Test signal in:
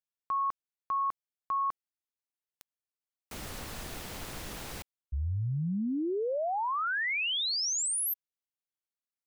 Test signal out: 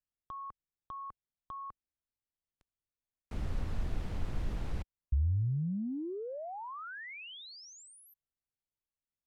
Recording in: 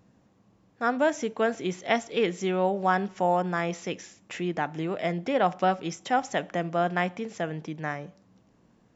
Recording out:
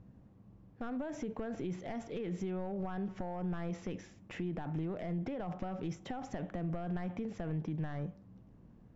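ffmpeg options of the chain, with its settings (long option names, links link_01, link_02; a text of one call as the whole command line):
ffmpeg -i in.wav -af "acompressor=threshold=-38dB:ratio=10:attack=16:release=21:knee=1:detection=rms,volume=32dB,asoftclip=hard,volume=-32dB,aemphasis=mode=reproduction:type=riaa,volume=-5dB" out.wav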